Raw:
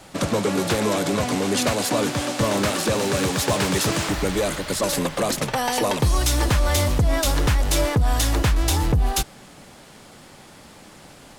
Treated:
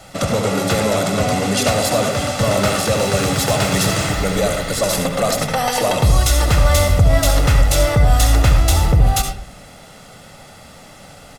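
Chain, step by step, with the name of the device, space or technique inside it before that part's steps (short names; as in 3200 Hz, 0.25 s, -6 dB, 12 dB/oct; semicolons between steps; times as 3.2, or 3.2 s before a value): microphone above a desk (comb 1.5 ms, depth 54%; reverb RT60 0.45 s, pre-delay 64 ms, DRR 4 dB); gain +2.5 dB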